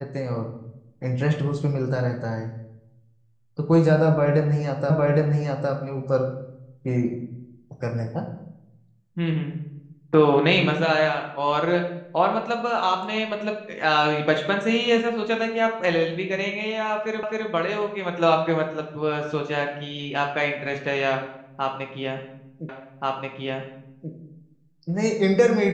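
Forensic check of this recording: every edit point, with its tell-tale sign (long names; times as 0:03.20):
0:04.90: the same again, the last 0.81 s
0:17.23: the same again, the last 0.26 s
0:22.69: the same again, the last 1.43 s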